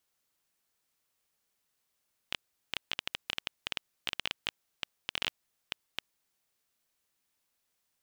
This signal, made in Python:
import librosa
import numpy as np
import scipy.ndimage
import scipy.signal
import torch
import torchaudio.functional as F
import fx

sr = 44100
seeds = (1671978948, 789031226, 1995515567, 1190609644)

y = fx.geiger_clicks(sr, seeds[0], length_s=3.77, per_s=9.6, level_db=-13.5)